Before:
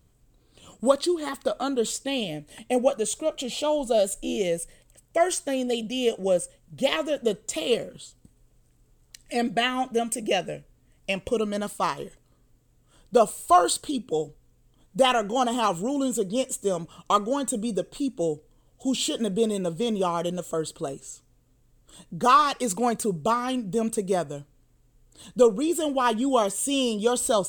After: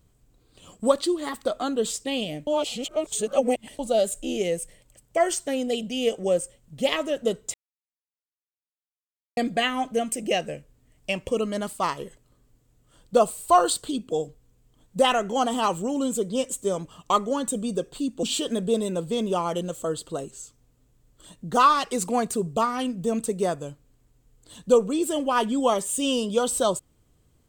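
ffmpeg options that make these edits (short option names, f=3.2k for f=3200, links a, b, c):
-filter_complex "[0:a]asplit=6[a][b][c][d][e][f];[a]atrim=end=2.472[g];[b]atrim=start=2.468:end=3.792,asetpts=PTS-STARTPTS,areverse[h];[c]atrim=start=3.788:end=7.54,asetpts=PTS-STARTPTS,afade=t=out:st=3.748:d=0.004:c=hsin[i];[d]atrim=start=7.54:end=9.37,asetpts=PTS-STARTPTS,volume=0[j];[e]atrim=start=9.37:end=18.232,asetpts=PTS-STARTPTS,afade=t=in:d=0.004:c=hsin[k];[f]atrim=start=18.918[l];[g][h]acrossfade=d=0.004:c1=hsin:c2=hsin[m];[i][j][k]concat=n=3:v=0:a=1[n];[m][n]acrossfade=d=0.004:c1=hsin:c2=hsin[o];[o][l]acrossfade=d=0.004:c1=hsin:c2=hsin"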